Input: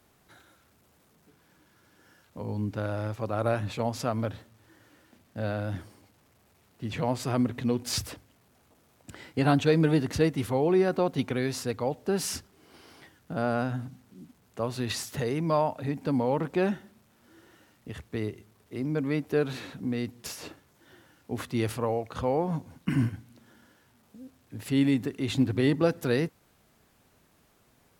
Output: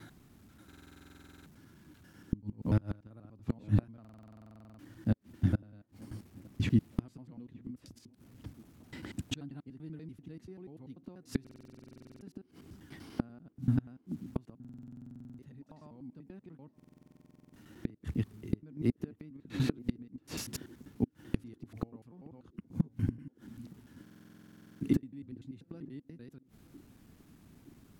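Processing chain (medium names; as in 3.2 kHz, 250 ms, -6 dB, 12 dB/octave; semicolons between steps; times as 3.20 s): slices played last to first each 97 ms, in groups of 4; inverted gate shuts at -23 dBFS, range -30 dB; resonant low shelf 370 Hz +9.5 dB, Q 1.5; on a send: band-passed feedback delay 919 ms, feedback 59%, band-pass 380 Hz, level -20 dB; on the sum: buffer glitch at 0.67/4.00/11.42/14.60/16.75/24.02 s, samples 2048, times 16; trim -1.5 dB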